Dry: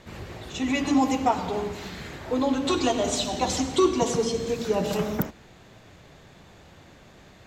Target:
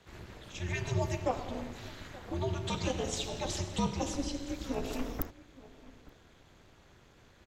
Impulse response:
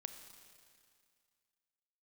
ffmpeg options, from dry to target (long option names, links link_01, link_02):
-filter_complex "[0:a]equalizer=frequency=360:width_type=o:width=0.85:gain=-3,afreqshift=-170,tremolo=f=270:d=0.824,asplit=2[link_01][link_02];[link_02]adelay=874.6,volume=-19dB,highshelf=frequency=4000:gain=-19.7[link_03];[link_01][link_03]amix=inputs=2:normalize=0,volume=-5dB"